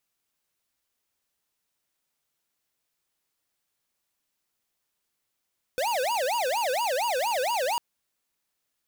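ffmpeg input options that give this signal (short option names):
-f lavfi -i "aevalsrc='0.0473*(2*lt(mod((731*t-234/(2*PI*4.3)*sin(2*PI*4.3*t)),1),0.5)-1)':d=2:s=44100"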